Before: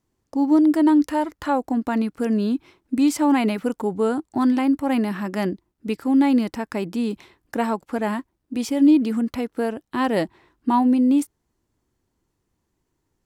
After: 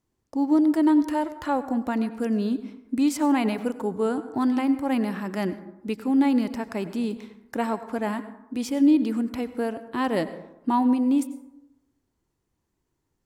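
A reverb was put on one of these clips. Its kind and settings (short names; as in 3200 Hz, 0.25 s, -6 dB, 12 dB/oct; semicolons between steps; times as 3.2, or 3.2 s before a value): plate-style reverb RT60 0.9 s, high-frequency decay 0.4×, pre-delay 80 ms, DRR 13 dB; gain -3.5 dB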